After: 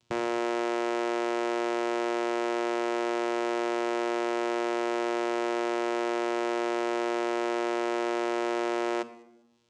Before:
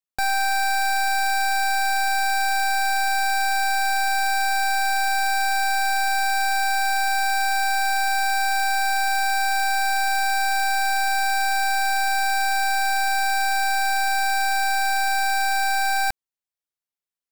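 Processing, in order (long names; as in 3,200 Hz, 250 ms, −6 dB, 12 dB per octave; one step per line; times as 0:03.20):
bass and treble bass +4 dB, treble +7 dB
upward compression, threshold −26 dBFS
time stretch by overlap-add 0.56×, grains 42 ms
channel vocoder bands 4, saw 118 Hz
on a send: delay with a high-pass on its return 201 ms, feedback 37%, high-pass 4,200 Hz, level −22.5 dB
on the sum: rectangular room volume 3,800 cubic metres, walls furnished, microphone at 1 metre
level −7.5 dB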